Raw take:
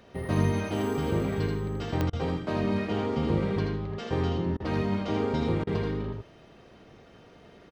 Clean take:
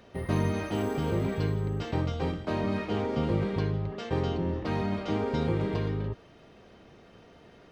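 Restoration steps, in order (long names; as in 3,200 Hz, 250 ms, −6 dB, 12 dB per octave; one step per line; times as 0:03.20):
click removal
repair the gap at 0:02.10/0:04.57/0:05.64, 29 ms
echo removal 81 ms −5 dB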